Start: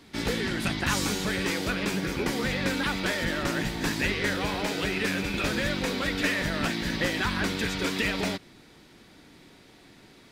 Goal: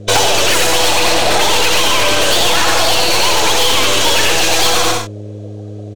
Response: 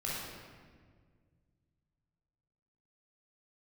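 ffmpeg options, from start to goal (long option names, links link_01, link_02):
-filter_complex "[0:a]afftdn=noise_reduction=25:noise_floor=-43,acrossover=split=270 5400:gain=0.126 1 0.0631[link_01][link_02][link_03];[link_01][link_02][link_03]amix=inputs=3:normalize=0,acrossover=split=120|7700[link_04][link_05][link_06];[link_04]acrusher=bits=7:mix=0:aa=0.000001[link_07];[link_07][link_05][link_06]amix=inputs=3:normalize=0,aeval=exprs='(tanh(63.1*val(0)+0.7)-tanh(0.7))/63.1':channel_layout=same,aeval=exprs='val(0)+0.00112*(sin(2*PI*60*n/s)+sin(2*PI*2*60*n/s)/2+sin(2*PI*3*60*n/s)/3+sin(2*PI*4*60*n/s)/4+sin(2*PI*5*60*n/s)/5)':channel_layout=same,aecho=1:1:150|255|328.5|380|416:0.631|0.398|0.251|0.158|0.1,asetrate=76440,aresample=44100,alimiter=level_in=30dB:limit=-1dB:release=50:level=0:latency=1,volume=-1.5dB"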